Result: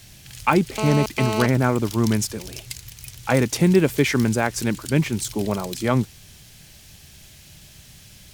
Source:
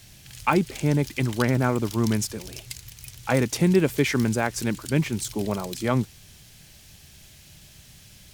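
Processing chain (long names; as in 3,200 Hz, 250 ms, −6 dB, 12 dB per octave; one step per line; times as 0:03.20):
0:00.78–0:01.46: phone interference −28 dBFS
0:03.39–0:04.10: log-companded quantiser 8 bits
level +3 dB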